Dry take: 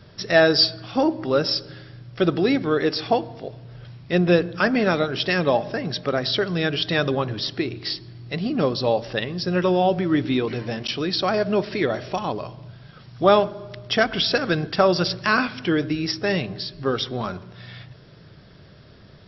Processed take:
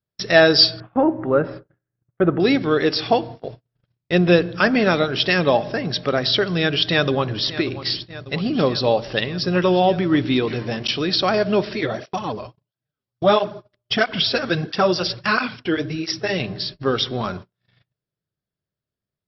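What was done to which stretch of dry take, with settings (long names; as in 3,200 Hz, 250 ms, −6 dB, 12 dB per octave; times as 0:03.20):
0:00.80–0:02.40: low-pass filter 1,800 Hz 24 dB per octave
0:06.75–0:07.43: delay throw 590 ms, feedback 80%, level −14 dB
0:11.73–0:16.40: through-zero flanger with one copy inverted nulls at 1.5 Hz, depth 7.5 ms
whole clip: noise gate −35 dBFS, range −43 dB; dynamic equaliser 3,200 Hz, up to +3 dB, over −37 dBFS, Q 1.1; level +2.5 dB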